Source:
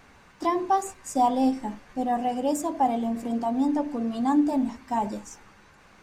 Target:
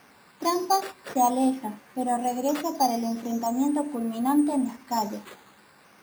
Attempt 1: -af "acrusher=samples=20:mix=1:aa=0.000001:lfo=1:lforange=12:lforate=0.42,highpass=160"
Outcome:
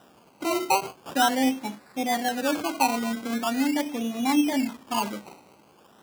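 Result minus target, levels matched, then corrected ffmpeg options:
decimation with a swept rate: distortion +12 dB
-af "acrusher=samples=6:mix=1:aa=0.000001:lfo=1:lforange=3.6:lforate=0.42,highpass=160"

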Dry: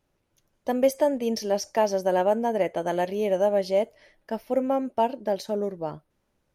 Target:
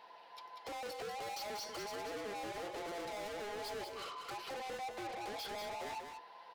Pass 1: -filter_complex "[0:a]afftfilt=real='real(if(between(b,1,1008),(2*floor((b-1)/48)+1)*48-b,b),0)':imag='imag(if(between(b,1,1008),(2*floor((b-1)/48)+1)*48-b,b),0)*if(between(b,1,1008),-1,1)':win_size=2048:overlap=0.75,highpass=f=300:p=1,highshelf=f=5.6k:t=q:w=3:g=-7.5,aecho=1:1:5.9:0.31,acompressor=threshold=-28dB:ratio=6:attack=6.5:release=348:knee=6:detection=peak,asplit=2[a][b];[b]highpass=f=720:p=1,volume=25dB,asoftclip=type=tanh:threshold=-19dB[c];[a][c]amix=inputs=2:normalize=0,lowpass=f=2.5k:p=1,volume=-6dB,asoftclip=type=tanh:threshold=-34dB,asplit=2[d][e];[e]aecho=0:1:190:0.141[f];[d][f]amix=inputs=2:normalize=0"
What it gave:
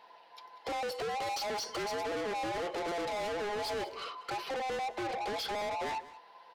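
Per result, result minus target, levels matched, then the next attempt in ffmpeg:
echo-to-direct -11 dB; compressor: peak gain reduction -6.5 dB; soft clip: distortion -4 dB
-filter_complex "[0:a]afftfilt=real='real(if(between(b,1,1008),(2*floor((b-1)/48)+1)*48-b,b),0)':imag='imag(if(between(b,1,1008),(2*floor((b-1)/48)+1)*48-b,b),0)*if(between(b,1,1008),-1,1)':win_size=2048:overlap=0.75,highpass=f=300:p=1,highshelf=f=5.6k:t=q:w=3:g=-7.5,aecho=1:1:5.9:0.31,acompressor=threshold=-28dB:ratio=6:attack=6.5:release=348:knee=6:detection=peak,asplit=2[a][b];[b]highpass=f=720:p=1,volume=25dB,asoftclip=type=tanh:threshold=-19dB[c];[a][c]amix=inputs=2:normalize=0,lowpass=f=2.5k:p=1,volume=-6dB,asoftclip=type=tanh:threshold=-34dB,asplit=2[d][e];[e]aecho=0:1:190:0.501[f];[d][f]amix=inputs=2:normalize=0"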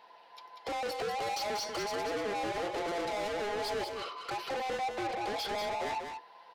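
compressor: peak gain reduction -6.5 dB; soft clip: distortion -4 dB
-filter_complex "[0:a]afftfilt=real='real(if(between(b,1,1008),(2*floor((b-1)/48)+1)*48-b,b),0)':imag='imag(if(between(b,1,1008),(2*floor((b-1)/48)+1)*48-b,b),0)*if(between(b,1,1008),-1,1)':win_size=2048:overlap=0.75,highpass=f=300:p=1,highshelf=f=5.6k:t=q:w=3:g=-7.5,aecho=1:1:5.9:0.31,acompressor=threshold=-35.5dB:ratio=6:attack=6.5:release=348:knee=6:detection=peak,asplit=2[a][b];[b]highpass=f=720:p=1,volume=25dB,asoftclip=type=tanh:threshold=-19dB[c];[a][c]amix=inputs=2:normalize=0,lowpass=f=2.5k:p=1,volume=-6dB,asoftclip=type=tanh:threshold=-34dB,asplit=2[d][e];[e]aecho=0:1:190:0.501[f];[d][f]amix=inputs=2:normalize=0"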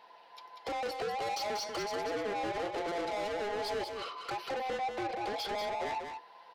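soft clip: distortion -5 dB
-filter_complex "[0:a]afftfilt=real='real(if(between(b,1,1008),(2*floor((b-1)/48)+1)*48-b,b),0)':imag='imag(if(between(b,1,1008),(2*floor((b-1)/48)+1)*48-b,b),0)*if(between(b,1,1008),-1,1)':win_size=2048:overlap=0.75,highpass=f=300:p=1,highshelf=f=5.6k:t=q:w=3:g=-7.5,aecho=1:1:5.9:0.31,acompressor=threshold=-35.5dB:ratio=6:attack=6.5:release=348:knee=6:detection=peak,asplit=2[a][b];[b]highpass=f=720:p=1,volume=25dB,asoftclip=type=tanh:threshold=-19dB[c];[a][c]amix=inputs=2:normalize=0,lowpass=f=2.5k:p=1,volume=-6dB,asoftclip=type=tanh:threshold=-43dB,asplit=2[d][e];[e]aecho=0:1:190:0.501[f];[d][f]amix=inputs=2:normalize=0"

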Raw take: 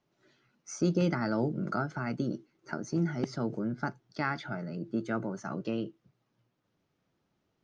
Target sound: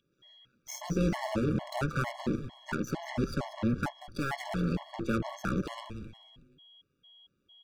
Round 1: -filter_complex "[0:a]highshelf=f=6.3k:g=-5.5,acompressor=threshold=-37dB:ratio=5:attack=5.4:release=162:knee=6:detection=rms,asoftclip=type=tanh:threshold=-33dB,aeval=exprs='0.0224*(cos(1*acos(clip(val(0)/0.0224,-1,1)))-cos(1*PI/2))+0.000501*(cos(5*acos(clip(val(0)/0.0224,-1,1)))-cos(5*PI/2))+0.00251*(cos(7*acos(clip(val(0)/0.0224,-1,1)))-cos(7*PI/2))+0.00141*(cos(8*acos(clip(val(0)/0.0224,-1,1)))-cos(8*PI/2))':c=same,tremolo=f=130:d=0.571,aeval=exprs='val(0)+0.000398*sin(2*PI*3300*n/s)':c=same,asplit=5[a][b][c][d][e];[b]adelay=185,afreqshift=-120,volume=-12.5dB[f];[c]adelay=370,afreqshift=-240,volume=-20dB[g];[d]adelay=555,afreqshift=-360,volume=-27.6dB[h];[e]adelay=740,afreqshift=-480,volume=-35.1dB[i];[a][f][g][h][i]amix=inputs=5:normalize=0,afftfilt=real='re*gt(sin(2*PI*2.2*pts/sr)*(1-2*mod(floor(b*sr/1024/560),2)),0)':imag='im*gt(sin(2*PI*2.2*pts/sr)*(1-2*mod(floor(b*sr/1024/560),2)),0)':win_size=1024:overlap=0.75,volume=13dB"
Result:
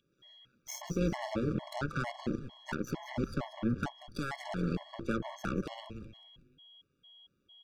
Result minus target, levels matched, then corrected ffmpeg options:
compressor: peak gain reduction +6.5 dB
-filter_complex "[0:a]highshelf=f=6.3k:g=-5.5,acompressor=threshold=-29dB:ratio=5:attack=5.4:release=162:knee=6:detection=rms,asoftclip=type=tanh:threshold=-33dB,aeval=exprs='0.0224*(cos(1*acos(clip(val(0)/0.0224,-1,1)))-cos(1*PI/2))+0.000501*(cos(5*acos(clip(val(0)/0.0224,-1,1)))-cos(5*PI/2))+0.00251*(cos(7*acos(clip(val(0)/0.0224,-1,1)))-cos(7*PI/2))+0.00141*(cos(8*acos(clip(val(0)/0.0224,-1,1)))-cos(8*PI/2))':c=same,tremolo=f=130:d=0.571,aeval=exprs='val(0)+0.000398*sin(2*PI*3300*n/s)':c=same,asplit=5[a][b][c][d][e];[b]adelay=185,afreqshift=-120,volume=-12.5dB[f];[c]adelay=370,afreqshift=-240,volume=-20dB[g];[d]adelay=555,afreqshift=-360,volume=-27.6dB[h];[e]adelay=740,afreqshift=-480,volume=-35.1dB[i];[a][f][g][h][i]amix=inputs=5:normalize=0,afftfilt=real='re*gt(sin(2*PI*2.2*pts/sr)*(1-2*mod(floor(b*sr/1024/560),2)),0)':imag='im*gt(sin(2*PI*2.2*pts/sr)*(1-2*mod(floor(b*sr/1024/560),2)),0)':win_size=1024:overlap=0.75,volume=13dB"

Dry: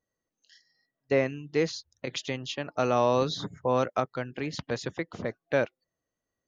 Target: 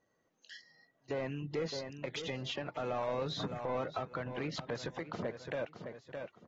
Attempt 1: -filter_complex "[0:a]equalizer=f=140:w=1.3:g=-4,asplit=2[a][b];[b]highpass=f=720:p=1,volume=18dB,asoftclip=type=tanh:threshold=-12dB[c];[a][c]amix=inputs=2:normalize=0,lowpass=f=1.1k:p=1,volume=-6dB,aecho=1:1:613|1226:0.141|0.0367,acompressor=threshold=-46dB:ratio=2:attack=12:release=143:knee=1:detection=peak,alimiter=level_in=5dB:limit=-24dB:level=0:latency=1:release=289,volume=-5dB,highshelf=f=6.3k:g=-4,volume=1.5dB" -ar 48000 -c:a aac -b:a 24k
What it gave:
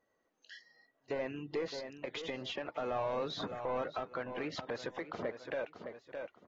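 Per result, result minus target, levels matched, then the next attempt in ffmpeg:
125 Hz band -7.5 dB; 8000 Hz band -4.0 dB
-filter_complex "[0:a]equalizer=f=140:w=1.3:g=7.5,asplit=2[a][b];[b]highpass=f=720:p=1,volume=18dB,asoftclip=type=tanh:threshold=-12dB[c];[a][c]amix=inputs=2:normalize=0,lowpass=f=1.1k:p=1,volume=-6dB,aecho=1:1:613|1226:0.141|0.0367,acompressor=threshold=-46dB:ratio=2:attack=12:release=143:knee=1:detection=peak,alimiter=level_in=5dB:limit=-24dB:level=0:latency=1:release=289,volume=-5dB,highshelf=f=6.3k:g=-4,volume=1.5dB" -ar 48000 -c:a aac -b:a 24k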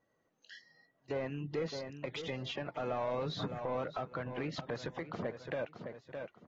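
8000 Hz band -4.5 dB
-filter_complex "[0:a]equalizer=f=140:w=1.3:g=7.5,asplit=2[a][b];[b]highpass=f=720:p=1,volume=18dB,asoftclip=type=tanh:threshold=-12dB[c];[a][c]amix=inputs=2:normalize=0,lowpass=f=1.1k:p=1,volume=-6dB,aecho=1:1:613|1226:0.141|0.0367,acompressor=threshold=-46dB:ratio=2:attack=12:release=143:knee=1:detection=peak,alimiter=level_in=5dB:limit=-24dB:level=0:latency=1:release=289,volume=-5dB,highshelf=f=6.3k:g=6,volume=1.5dB" -ar 48000 -c:a aac -b:a 24k

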